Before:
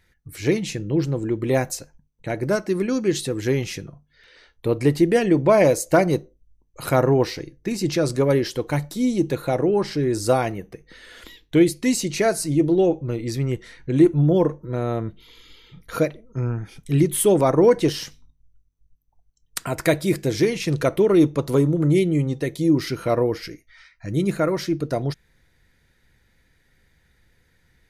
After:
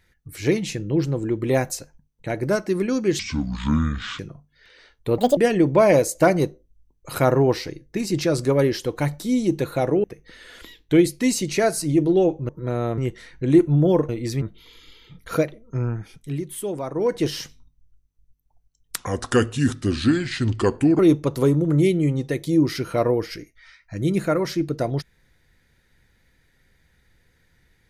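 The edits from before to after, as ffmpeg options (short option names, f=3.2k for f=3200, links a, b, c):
-filter_complex "[0:a]asplit=14[a][b][c][d][e][f][g][h][i][j][k][l][m][n];[a]atrim=end=3.194[o];[b]atrim=start=3.19:end=3.77,asetpts=PTS-STARTPTS,asetrate=25578,aresample=44100[p];[c]atrim=start=3.766:end=4.764[q];[d]atrim=start=4.76:end=5.08,asetpts=PTS-STARTPTS,asetrate=74970,aresample=44100,atrim=end_sample=8301,asetpts=PTS-STARTPTS[r];[e]atrim=start=5.076:end=9.752[s];[f]atrim=start=10.658:end=13.112[t];[g]atrim=start=14.548:end=15.042[u];[h]atrim=start=13.438:end=14.552[v];[i]atrim=start=13.108:end=13.442[w];[j]atrim=start=15.038:end=17.02,asetpts=PTS-STARTPTS,afade=t=out:st=1.522:d=0.46:silence=0.266073[x];[k]atrim=start=17.02:end=17.56,asetpts=PTS-STARTPTS,volume=-11.5dB[y];[l]atrim=start=17.56:end=19.604,asetpts=PTS-STARTPTS,afade=t=in:d=0.46:silence=0.266073[z];[m]atrim=start=19.6:end=21.11,asetpts=PTS-STARTPTS,asetrate=33075,aresample=44100[aa];[n]atrim=start=21.106[ab];[o][p]acrossfade=d=0.004:c1=hsin:c2=hsin[ac];[ac][q]acrossfade=d=0.004:c1=hsin:c2=hsin[ad];[ad][r]acrossfade=d=0.004:c1=hsin:c2=hsin[ae];[ae][s]acrossfade=d=0.004:c1=hsin:c2=hsin[af];[af][t]acrossfade=d=0.004:c1=hsin:c2=hsin[ag];[ag][u]acrossfade=d=0.004:c1=hsin:c2=hsin[ah];[ah][v]acrossfade=d=0.004:c1=hsin:c2=hsin[ai];[ai][w]acrossfade=d=0.004:c1=hsin:c2=hsin[aj];[x][y][z]concat=n=3:v=0:a=1[ak];[aj][ak]acrossfade=d=0.004:c1=hsin:c2=hsin[al];[al][aa]acrossfade=d=0.004:c1=hsin:c2=hsin[am];[am][ab]acrossfade=d=0.004:c1=hsin:c2=hsin"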